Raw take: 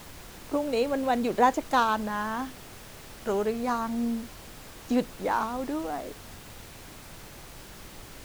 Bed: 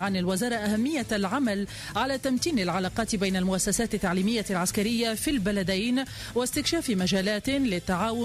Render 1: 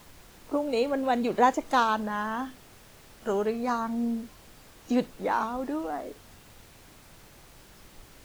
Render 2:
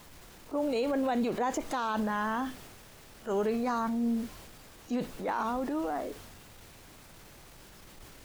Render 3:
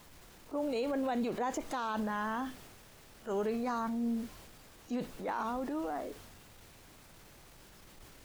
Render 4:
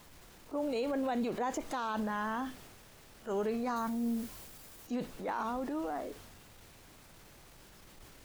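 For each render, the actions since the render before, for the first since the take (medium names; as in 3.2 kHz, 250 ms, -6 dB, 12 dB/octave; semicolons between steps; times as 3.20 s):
noise print and reduce 7 dB
transient shaper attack -7 dB, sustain +4 dB; peak limiter -22 dBFS, peak gain reduction 10 dB
trim -4 dB
3.76–4.87 s: treble shelf 7.7 kHz +11 dB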